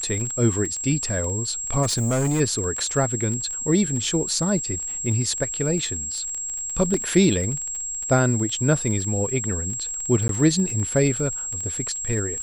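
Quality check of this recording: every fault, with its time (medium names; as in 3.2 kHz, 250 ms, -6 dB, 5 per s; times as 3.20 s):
crackle 19 per s -27 dBFS
whine 7.6 kHz -27 dBFS
1.82–2.41 s: clipped -18.5 dBFS
6.94 s: dropout 2 ms
10.28–10.29 s: dropout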